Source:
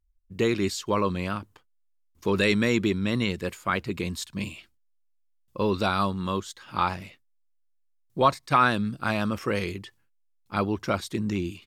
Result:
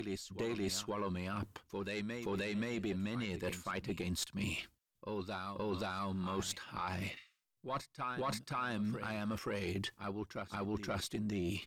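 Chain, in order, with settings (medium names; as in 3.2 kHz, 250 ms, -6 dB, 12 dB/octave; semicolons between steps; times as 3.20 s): reverse echo 527 ms -14 dB; peak limiter -18.5 dBFS, peak gain reduction 11 dB; reverse; compression 4:1, threshold -42 dBFS, peak gain reduction 15.5 dB; reverse; spectral replace 7.19–7.45 s, 1.1–9.6 kHz both; valve stage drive 32 dB, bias 0.45; trim +7 dB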